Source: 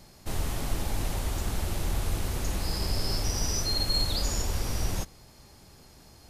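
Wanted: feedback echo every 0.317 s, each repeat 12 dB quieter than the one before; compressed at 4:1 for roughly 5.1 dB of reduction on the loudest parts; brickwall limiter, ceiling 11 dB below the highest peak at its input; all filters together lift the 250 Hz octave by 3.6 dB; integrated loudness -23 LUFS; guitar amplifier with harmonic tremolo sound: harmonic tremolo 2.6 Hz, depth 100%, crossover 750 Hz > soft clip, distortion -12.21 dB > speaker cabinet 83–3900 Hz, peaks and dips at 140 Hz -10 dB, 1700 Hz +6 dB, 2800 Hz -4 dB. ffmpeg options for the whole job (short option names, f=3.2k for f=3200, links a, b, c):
-filter_complex "[0:a]equalizer=f=250:t=o:g=6,acompressor=threshold=-28dB:ratio=4,alimiter=level_in=6dB:limit=-24dB:level=0:latency=1,volume=-6dB,aecho=1:1:317|634|951:0.251|0.0628|0.0157,acrossover=split=750[a][b];[a]aeval=exprs='val(0)*(1-1/2+1/2*cos(2*PI*2.6*n/s))':c=same[c];[b]aeval=exprs='val(0)*(1-1/2-1/2*cos(2*PI*2.6*n/s))':c=same[d];[c][d]amix=inputs=2:normalize=0,asoftclip=threshold=-39.5dB,highpass=83,equalizer=f=140:t=q:w=4:g=-10,equalizer=f=1.7k:t=q:w=4:g=6,equalizer=f=2.8k:t=q:w=4:g=-4,lowpass=f=3.9k:w=0.5412,lowpass=f=3.9k:w=1.3066,volume=29dB"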